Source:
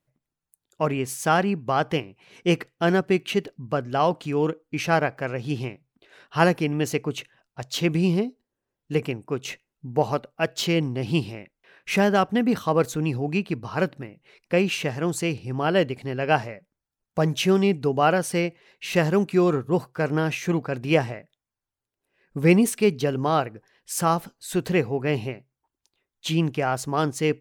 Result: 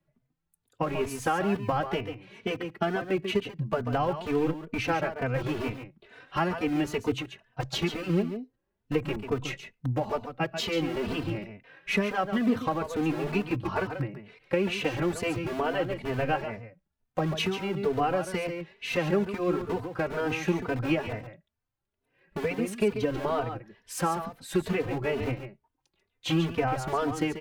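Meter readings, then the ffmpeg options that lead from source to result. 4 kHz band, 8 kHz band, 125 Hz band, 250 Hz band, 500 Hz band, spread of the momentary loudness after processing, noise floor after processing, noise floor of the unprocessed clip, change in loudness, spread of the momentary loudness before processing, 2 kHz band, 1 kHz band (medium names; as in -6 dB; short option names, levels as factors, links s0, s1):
-4.5 dB, -9.0 dB, -6.5 dB, -5.5 dB, -5.5 dB, 9 LU, -81 dBFS, under -85 dBFS, -5.5 dB, 11 LU, -5.0 dB, -5.0 dB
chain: -filter_complex "[0:a]acrossover=split=180|430|4400[s0][s1][s2][s3];[s0]aeval=exprs='(mod(44.7*val(0)+1,2)-1)/44.7':c=same[s4];[s4][s1][s2][s3]amix=inputs=4:normalize=0,bass=f=250:g=5,treble=f=4000:g=-10,acompressor=threshold=0.0562:ratio=6,aecho=1:1:140:0.355,asplit=2[s5][s6];[s6]adelay=3.2,afreqshift=2.2[s7];[s5][s7]amix=inputs=2:normalize=1,volume=1.58"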